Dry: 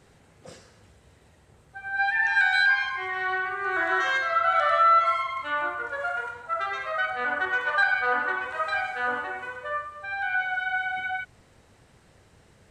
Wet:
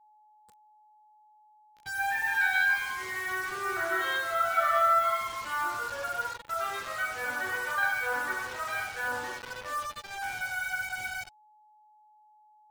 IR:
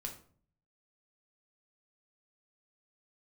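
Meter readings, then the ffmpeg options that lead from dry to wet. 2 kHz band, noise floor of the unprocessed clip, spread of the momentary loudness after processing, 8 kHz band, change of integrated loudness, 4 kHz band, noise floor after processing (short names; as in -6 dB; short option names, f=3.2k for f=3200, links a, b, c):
-5.0 dB, -58 dBFS, 12 LU, n/a, -4.5 dB, -3.5 dB, -61 dBFS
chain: -filter_complex "[1:a]atrim=start_sample=2205,asetrate=41895,aresample=44100[a];[0:a][a]afir=irnorm=-1:irlink=0,acrusher=bits=5:mix=0:aa=0.000001,aeval=exprs='val(0)+0.002*sin(2*PI*850*n/s)':c=same,afftdn=nr=13:nf=-47,volume=-3dB"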